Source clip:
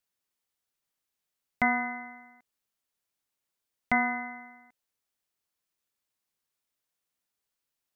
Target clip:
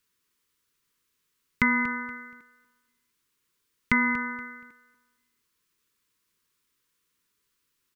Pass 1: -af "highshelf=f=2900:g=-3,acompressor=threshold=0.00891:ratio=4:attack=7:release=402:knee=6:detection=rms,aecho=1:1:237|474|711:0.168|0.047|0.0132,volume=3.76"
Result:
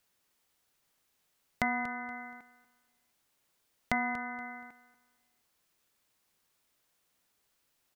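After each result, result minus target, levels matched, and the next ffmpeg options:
compression: peak gain reduction +10 dB; 500 Hz band +9.0 dB
-af "highshelf=f=2900:g=-3,acompressor=threshold=0.0335:ratio=4:attack=7:release=402:knee=6:detection=rms,aecho=1:1:237|474|711:0.168|0.047|0.0132,volume=3.76"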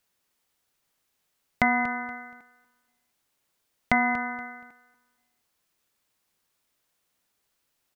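500 Hz band +8.0 dB
-af "asuperstop=centerf=690:order=8:qfactor=1.6,highshelf=f=2900:g=-3,acompressor=threshold=0.0335:ratio=4:attack=7:release=402:knee=6:detection=rms,aecho=1:1:237|474|711:0.168|0.047|0.0132,volume=3.76"

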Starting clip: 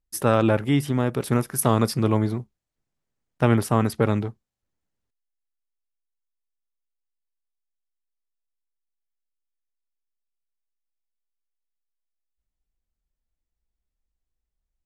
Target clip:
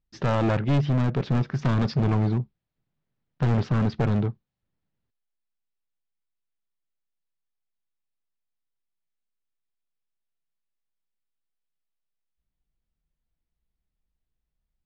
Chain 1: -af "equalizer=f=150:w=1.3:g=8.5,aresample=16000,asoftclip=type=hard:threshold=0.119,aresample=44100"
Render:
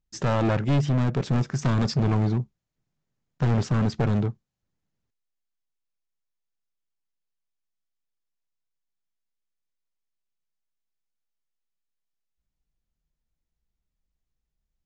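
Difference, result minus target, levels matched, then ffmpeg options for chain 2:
4 kHz band +2.5 dB
-af "lowpass=f=4300:w=0.5412,lowpass=f=4300:w=1.3066,equalizer=f=150:w=1.3:g=8.5,aresample=16000,asoftclip=type=hard:threshold=0.119,aresample=44100"

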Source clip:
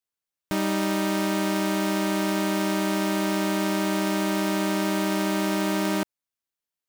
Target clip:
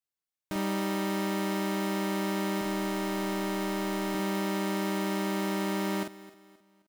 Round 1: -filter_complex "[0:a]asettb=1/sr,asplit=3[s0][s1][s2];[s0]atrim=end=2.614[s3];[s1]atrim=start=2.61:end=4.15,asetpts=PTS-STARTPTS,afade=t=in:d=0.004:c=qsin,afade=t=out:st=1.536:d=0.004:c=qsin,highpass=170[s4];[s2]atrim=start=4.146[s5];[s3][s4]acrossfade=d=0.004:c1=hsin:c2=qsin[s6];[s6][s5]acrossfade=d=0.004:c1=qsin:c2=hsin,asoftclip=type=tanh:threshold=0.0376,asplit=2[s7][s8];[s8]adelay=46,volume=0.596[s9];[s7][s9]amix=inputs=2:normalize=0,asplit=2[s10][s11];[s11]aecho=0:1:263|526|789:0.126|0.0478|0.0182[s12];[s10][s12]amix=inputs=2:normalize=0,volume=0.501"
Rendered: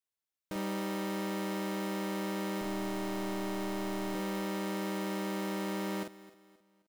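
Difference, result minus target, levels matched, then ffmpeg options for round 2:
saturation: distortion +9 dB
-filter_complex "[0:a]asettb=1/sr,asplit=3[s0][s1][s2];[s0]atrim=end=2.614[s3];[s1]atrim=start=2.61:end=4.15,asetpts=PTS-STARTPTS,afade=t=in:d=0.004:c=qsin,afade=t=out:st=1.536:d=0.004:c=qsin,highpass=170[s4];[s2]atrim=start=4.146[s5];[s3][s4]acrossfade=d=0.004:c1=hsin:c2=qsin[s6];[s6][s5]acrossfade=d=0.004:c1=qsin:c2=hsin,asoftclip=type=tanh:threshold=0.112,asplit=2[s7][s8];[s8]adelay=46,volume=0.596[s9];[s7][s9]amix=inputs=2:normalize=0,asplit=2[s10][s11];[s11]aecho=0:1:263|526|789:0.126|0.0478|0.0182[s12];[s10][s12]amix=inputs=2:normalize=0,volume=0.501"

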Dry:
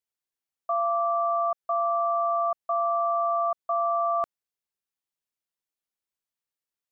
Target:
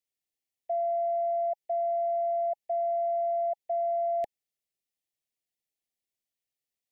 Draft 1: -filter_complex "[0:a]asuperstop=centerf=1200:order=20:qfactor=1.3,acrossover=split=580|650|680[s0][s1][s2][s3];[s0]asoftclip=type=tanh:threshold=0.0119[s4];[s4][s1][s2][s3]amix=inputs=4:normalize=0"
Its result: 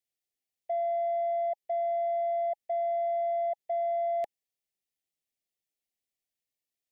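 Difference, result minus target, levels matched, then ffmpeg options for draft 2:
saturation: distortion +16 dB
-filter_complex "[0:a]asuperstop=centerf=1200:order=20:qfactor=1.3,acrossover=split=580|650|680[s0][s1][s2][s3];[s0]asoftclip=type=tanh:threshold=0.0376[s4];[s4][s1][s2][s3]amix=inputs=4:normalize=0"

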